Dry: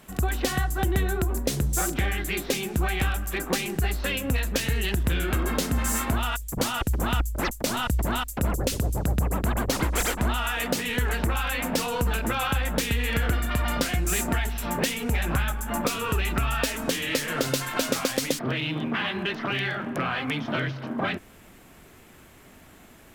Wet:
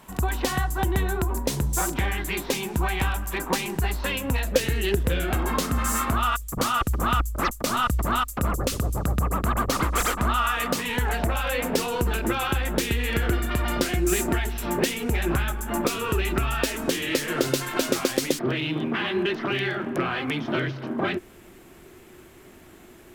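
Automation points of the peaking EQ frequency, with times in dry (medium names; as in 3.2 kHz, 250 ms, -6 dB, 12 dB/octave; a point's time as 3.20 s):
peaking EQ +12.5 dB 0.28 oct
4.35 s 960 Hz
4.75 s 300 Hz
5.66 s 1.2 kHz
10.70 s 1.2 kHz
11.88 s 360 Hz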